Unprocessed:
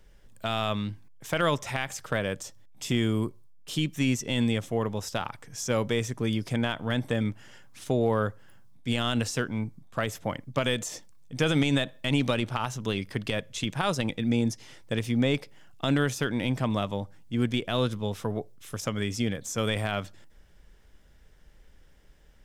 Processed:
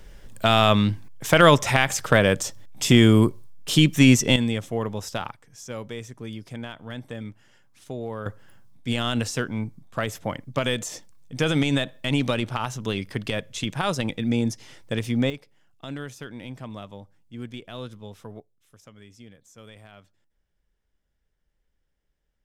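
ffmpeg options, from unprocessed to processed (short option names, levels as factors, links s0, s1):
-af "asetnsamples=n=441:p=0,asendcmd='4.36 volume volume 1dB;5.32 volume volume -8dB;8.26 volume volume 2dB;15.3 volume volume -10dB;18.4 volume volume -19dB',volume=3.55"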